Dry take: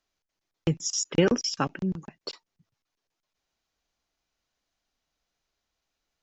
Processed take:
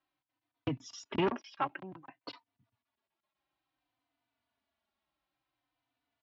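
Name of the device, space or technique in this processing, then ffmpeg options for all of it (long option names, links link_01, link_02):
barber-pole flanger into a guitar amplifier: -filter_complex "[0:a]asplit=2[link_01][link_02];[link_02]adelay=3.3,afreqshift=-0.56[link_03];[link_01][link_03]amix=inputs=2:normalize=1,asoftclip=type=tanh:threshold=-22.5dB,highpass=82,equalizer=frequency=120:width_type=q:width=4:gain=6,equalizer=frequency=170:width_type=q:width=4:gain=-7,equalizer=frequency=280:width_type=q:width=4:gain=8,equalizer=frequency=470:width_type=q:width=4:gain=-8,equalizer=frequency=680:width_type=q:width=4:gain=4,equalizer=frequency=980:width_type=q:width=4:gain=6,lowpass=frequency=3700:width=0.5412,lowpass=frequency=3700:width=1.3066,asettb=1/sr,asplit=3[link_04][link_05][link_06];[link_04]atrim=end=1.304[link_07];[link_05]atrim=start=1.3:end=2.28,asetpts=PTS-STARTPTS,afade=type=in:duration=0.004:curve=qsin,afade=type=out:start_time=0.976:duration=0.004:curve=qsin,acrossover=split=430 3700:gain=0.178 1 0.178[link_08][link_09][link_10];[link_08][link_09][link_10]amix=inputs=3:normalize=0[link_11];[link_06]atrim=start=2.276[link_12];[link_07][link_11]acrossfade=duration=0.004:curve1=hsin:curve2=qsin[link_13];[link_13][link_12]acrossfade=duration=0.004:curve1=qsin:curve2=hsin"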